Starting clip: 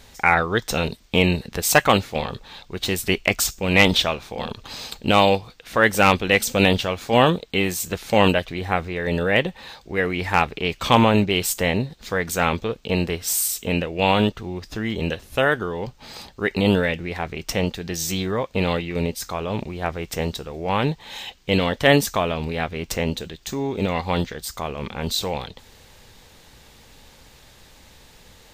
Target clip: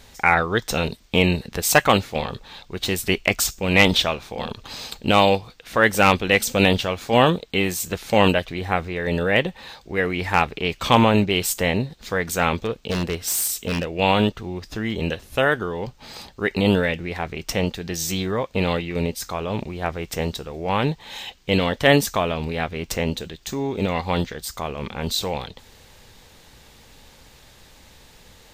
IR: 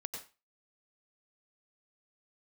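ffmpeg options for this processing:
-filter_complex "[0:a]asettb=1/sr,asplit=3[link_01][link_02][link_03];[link_01]atrim=end=12.624[link_04];[link_02]atrim=start=12.62:end=13.86,asetpts=PTS-STARTPTS,afade=type=in:duration=0.004:curve=qsin,afade=type=out:start_time=1.236:duration=0.004:curve=qsin,aeval=exprs='0.15*(abs(mod(val(0)/0.15+3,4)-2)-1)':channel_layout=same[link_05];[link_03]atrim=start=13.856[link_06];[link_04][link_05]acrossfade=duration=0.004:curve1=hsin:curve2=qsin[link_07];[link_07][link_06]acrossfade=duration=0.004:curve1=qsin:curve2=hsin"

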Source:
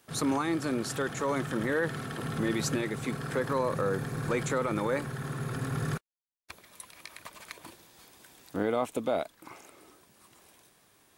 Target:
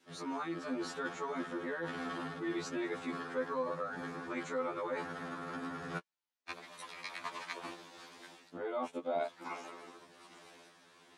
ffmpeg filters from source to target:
ffmpeg -i in.wav -af "areverse,acompressor=threshold=-40dB:ratio=8,areverse,adynamicequalizer=threshold=0.00158:dfrequency=960:dqfactor=1:tfrequency=960:tqfactor=1:attack=5:release=100:ratio=0.375:range=2:mode=boostabove:tftype=bell,highpass=190,lowpass=5200,afftfilt=real='re*2*eq(mod(b,4),0)':imag='im*2*eq(mod(b,4),0)':win_size=2048:overlap=0.75,volume=6.5dB" out.wav

